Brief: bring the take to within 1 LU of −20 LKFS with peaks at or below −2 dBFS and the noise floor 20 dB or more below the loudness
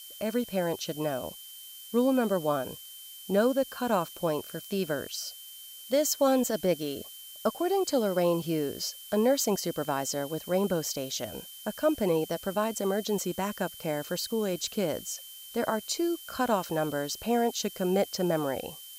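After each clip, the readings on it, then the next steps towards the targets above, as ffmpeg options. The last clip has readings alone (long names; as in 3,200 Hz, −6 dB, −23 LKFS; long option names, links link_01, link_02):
interfering tone 3,100 Hz; level of the tone −48 dBFS; background noise floor −46 dBFS; target noise floor −50 dBFS; integrated loudness −29.5 LKFS; sample peak −14.0 dBFS; target loudness −20.0 LKFS
→ -af "bandreject=frequency=3100:width=30"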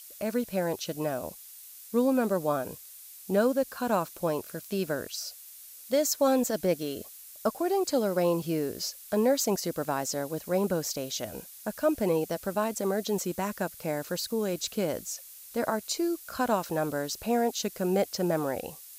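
interfering tone none found; background noise floor −48 dBFS; target noise floor −50 dBFS
→ -af "afftdn=noise_reduction=6:noise_floor=-48"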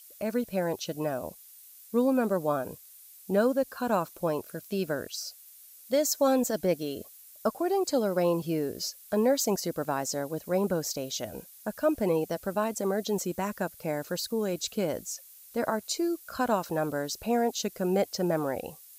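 background noise floor −52 dBFS; integrated loudness −29.5 LKFS; sample peak −14.5 dBFS; target loudness −20.0 LKFS
→ -af "volume=9.5dB"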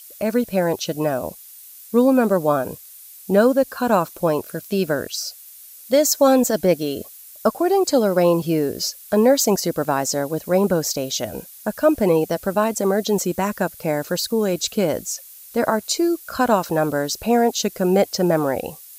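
integrated loudness −20.0 LKFS; sample peak −5.0 dBFS; background noise floor −43 dBFS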